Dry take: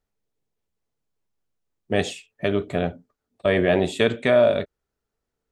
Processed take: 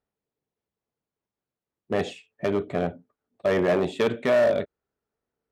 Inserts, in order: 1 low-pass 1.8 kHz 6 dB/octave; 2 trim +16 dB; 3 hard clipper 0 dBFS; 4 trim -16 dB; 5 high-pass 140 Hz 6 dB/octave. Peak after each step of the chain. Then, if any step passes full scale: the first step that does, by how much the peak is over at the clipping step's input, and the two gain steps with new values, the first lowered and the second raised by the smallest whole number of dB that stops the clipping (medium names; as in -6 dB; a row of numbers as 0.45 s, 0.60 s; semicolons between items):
-7.0 dBFS, +9.0 dBFS, 0.0 dBFS, -16.0 dBFS, -13.0 dBFS; step 2, 9.0 dB; step 2 +7 dB, step 4 -7 dB